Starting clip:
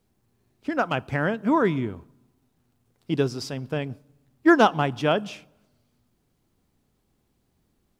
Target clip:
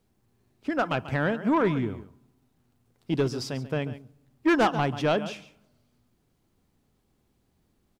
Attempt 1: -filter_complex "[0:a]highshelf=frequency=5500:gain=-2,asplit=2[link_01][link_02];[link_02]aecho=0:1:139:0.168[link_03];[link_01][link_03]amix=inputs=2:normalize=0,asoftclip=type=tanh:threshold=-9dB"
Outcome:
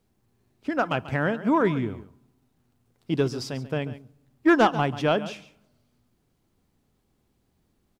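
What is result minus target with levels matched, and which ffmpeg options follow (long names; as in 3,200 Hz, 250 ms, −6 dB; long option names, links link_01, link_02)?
soft clipping: distortion −8 dB
-filter_complex "[0:a]highshelf=frequency=5500:gain=-2,asplit=2[link_01][link_02];[link_02]aecho=0:1:139:0.168[link_03];[link_01][link_03]amix=inputs=2:normalize=0,asoftclip=type=tanh:threshold=-16dB"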